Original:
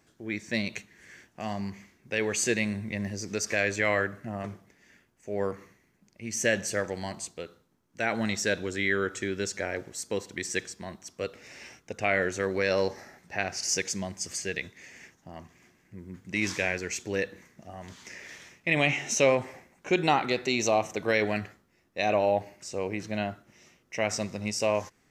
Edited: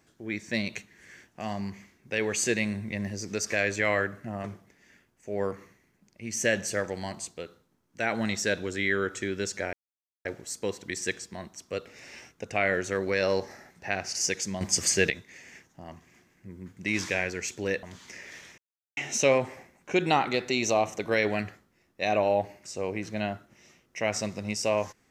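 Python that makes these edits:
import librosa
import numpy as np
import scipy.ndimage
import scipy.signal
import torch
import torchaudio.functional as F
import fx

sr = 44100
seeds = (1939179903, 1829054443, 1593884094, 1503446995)

y = fx.edit(x, sr, fx.insert_silence(at_s=9.73, length_s=0.52),
    fx.clip_gain(start_s=14.09, length_s=0.49, db=9.5),
    fx.cut(start_s=17.31, length_s=0.49),
    fx.silence(start_s=18.55, length_s=0.39), tone=tone)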